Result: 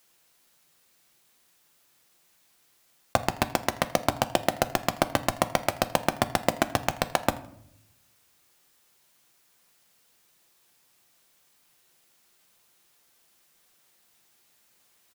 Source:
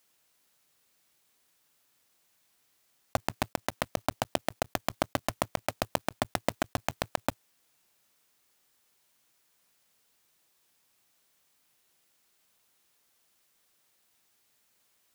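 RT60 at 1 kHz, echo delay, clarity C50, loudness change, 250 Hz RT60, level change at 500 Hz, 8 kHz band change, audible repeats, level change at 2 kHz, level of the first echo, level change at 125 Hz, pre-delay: 0.60 s, 81 ms, 15.5 dB, +6.0 dB, 1.0 s, +6.0 dB, +6.0 dB, 1, +6.0 dB, −22.0 dB, +6.0 dB, 6 ms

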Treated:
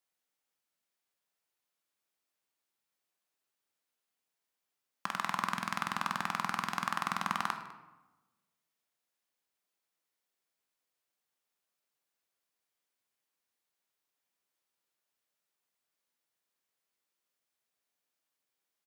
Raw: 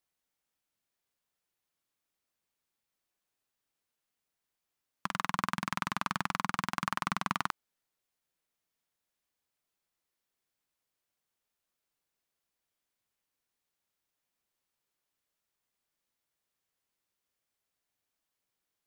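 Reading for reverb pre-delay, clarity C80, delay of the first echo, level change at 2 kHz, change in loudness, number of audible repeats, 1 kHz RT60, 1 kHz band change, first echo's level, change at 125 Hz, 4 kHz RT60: 12 ms, 10.5 dB, 202 ms, −0.5 dB, −0.5 dB, 1, 1.1 s, 0.0 dB, −20.0 dB, −5.0 dB, 0.65 s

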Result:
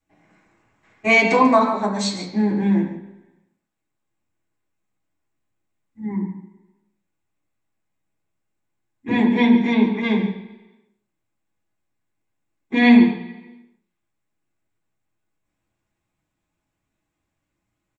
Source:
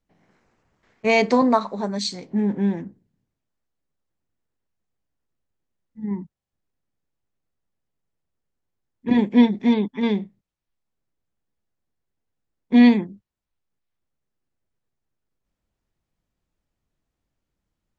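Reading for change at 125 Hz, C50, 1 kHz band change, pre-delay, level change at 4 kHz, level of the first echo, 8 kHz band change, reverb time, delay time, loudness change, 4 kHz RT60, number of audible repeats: +3.5 dB, 6.5 dB, +4.5 dB, 3 ms, +2.0 dB, −11.5 dB, can't be measured, 1.0 s, 143 ms, +2.0 dB, 0.95 s, 1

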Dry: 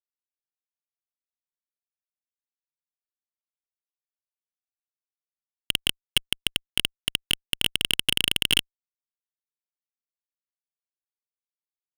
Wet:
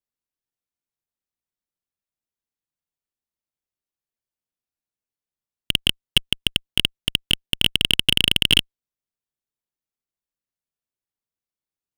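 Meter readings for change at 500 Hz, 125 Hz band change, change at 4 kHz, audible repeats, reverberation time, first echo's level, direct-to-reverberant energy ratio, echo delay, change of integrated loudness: +5.5 dB, +9.5 dB, +6.0 dB, no echo audible, no reverb audible, no echo audible, no reverb audible, no echo audible, +5.5 dB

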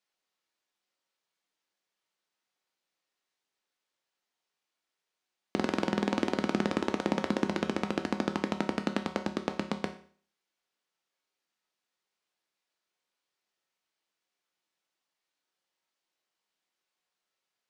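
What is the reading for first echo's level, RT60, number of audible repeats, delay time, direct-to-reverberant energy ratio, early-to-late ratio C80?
no echo audible, 0.45 s, no echo audible, no echo audible, 6.0 dB, 16.0 dB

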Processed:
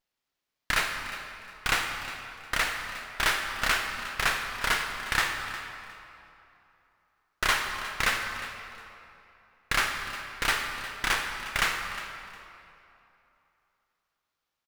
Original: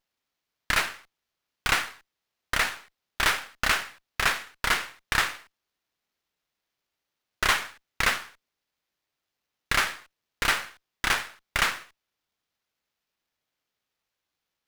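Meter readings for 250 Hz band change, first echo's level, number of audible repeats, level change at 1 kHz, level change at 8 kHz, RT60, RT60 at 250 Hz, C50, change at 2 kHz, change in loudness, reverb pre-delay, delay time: −1.0 dB, −15.0 dB, 2, −1.0 dB, −1.5 dB, 2.9 s, 2.8 s, 4.5 dB, −1.0 dB, −2.5 dB, 24 ms, 358 ms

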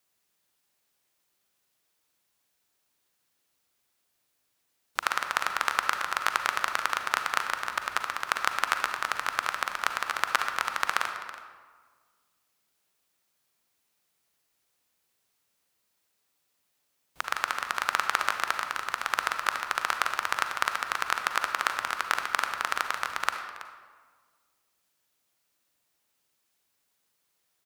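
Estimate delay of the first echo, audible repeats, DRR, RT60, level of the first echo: 327 ms, 1, 5.5 dB, 1.6 s, −16.0 dB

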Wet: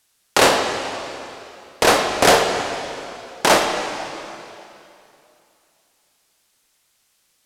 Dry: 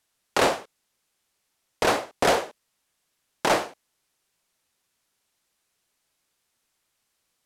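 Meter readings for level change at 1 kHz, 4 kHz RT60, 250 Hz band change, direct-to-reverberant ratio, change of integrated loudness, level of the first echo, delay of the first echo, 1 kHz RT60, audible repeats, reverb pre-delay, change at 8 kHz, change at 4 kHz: +8.0 dB, 2.6 s, +7.5 dB, 3.0 dB, +6.5 dB, no echo audible, no echo audible, 2.7 s, no echo audible, 6 ms, +11.5 dB, +11.0 dB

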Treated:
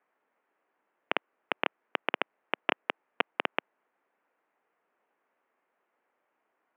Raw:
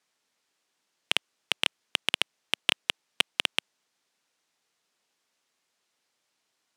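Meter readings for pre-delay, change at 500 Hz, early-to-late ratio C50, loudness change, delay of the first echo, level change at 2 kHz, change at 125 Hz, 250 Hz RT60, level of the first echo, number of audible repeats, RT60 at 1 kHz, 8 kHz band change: no reverb audible, +7.0 dB, no reverb audible, −5.0 dB, no echo audible, −2.0 dB, −5.0 dB, no reverb audible, no echo audible, no echo audible, no reverb audible, below −40 dB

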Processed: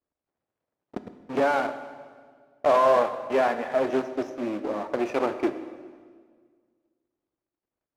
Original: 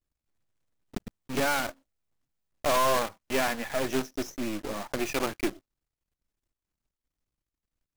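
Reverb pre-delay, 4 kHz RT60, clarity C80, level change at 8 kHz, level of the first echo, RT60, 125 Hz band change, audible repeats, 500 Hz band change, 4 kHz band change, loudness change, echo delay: 8 ms, 1.5 s, 12.0 dB, below −10 dB, no echo audible, 1.8 s, −4.5 dB, no echo audible, +7.0 dB, −7.5 dB, +4.0 dB, no echo audible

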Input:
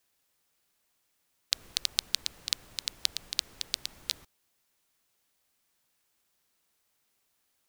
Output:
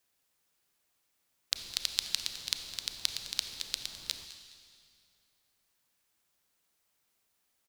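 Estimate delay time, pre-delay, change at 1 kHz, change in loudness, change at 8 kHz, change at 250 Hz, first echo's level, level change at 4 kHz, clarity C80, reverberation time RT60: 209 ms, 28 ms, −1.5 dB, −2.0 dB, −1.5 dB, −1.5 dB, −15.5 dB, −2.0 dB, 8.0 dB, 2.4 s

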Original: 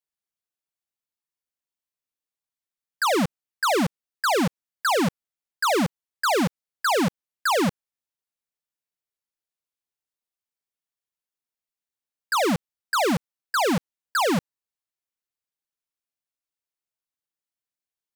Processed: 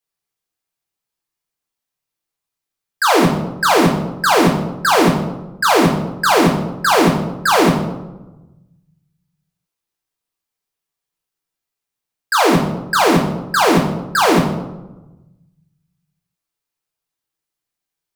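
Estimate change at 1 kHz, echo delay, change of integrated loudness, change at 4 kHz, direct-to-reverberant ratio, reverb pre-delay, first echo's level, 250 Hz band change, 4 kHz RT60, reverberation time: +10.0 dB, no echo audible, +9.5 dB, +8.5 dB, −0.5 dB, 3 ms, no echo audible, +10.0 dB, 0.60 s, 1.1 s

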